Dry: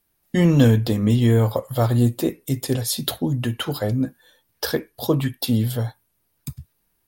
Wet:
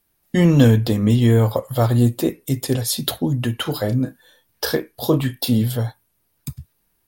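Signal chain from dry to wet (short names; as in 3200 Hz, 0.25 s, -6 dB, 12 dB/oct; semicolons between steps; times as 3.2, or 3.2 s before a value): 3.62–5.62 doubler 32 ms -9 dB; gain +2 dB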